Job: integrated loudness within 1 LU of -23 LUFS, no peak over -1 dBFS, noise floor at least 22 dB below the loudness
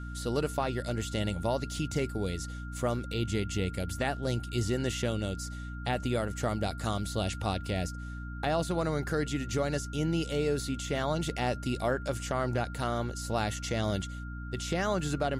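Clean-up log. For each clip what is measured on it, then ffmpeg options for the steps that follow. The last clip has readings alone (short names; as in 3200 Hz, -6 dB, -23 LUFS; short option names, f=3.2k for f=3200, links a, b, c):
hum 60 Hz; harmonics up to 300 Hz; hum level -37 dBFS; steady tone 1400 Hz; tone level -46 dBFS; loudness -32.5 LUFS; peak -16.5 dBFS; loudness target -23.0 LUFS
-> -af "bandreject=f=60:t=h:w=4,bandreject=f=120:t=h:w=4,bandreject=f=180:t=h:w=4,bandreject=f=240:t=h:w=4,bandreject=f=300:t=h:w=4"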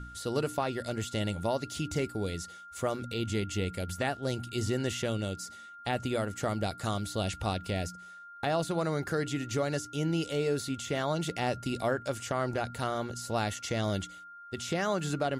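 hum none; steady tone 1400 Hz; tone level -46 dBFS
-> -af "bandreject=f=1.4k:w=30"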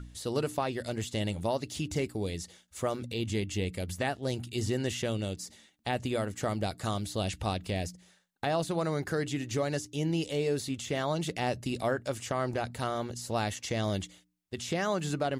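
steady tone none; loudness -33.0 LUFS; peak -17.5 dBFS; loudness target -23.0 LUFS
-> -af "volume=10dB"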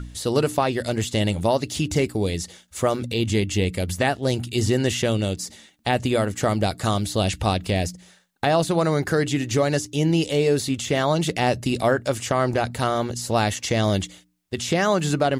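loudness -23.0 LUFS; peak -7.5 dBFS; noise floor -56 dBFS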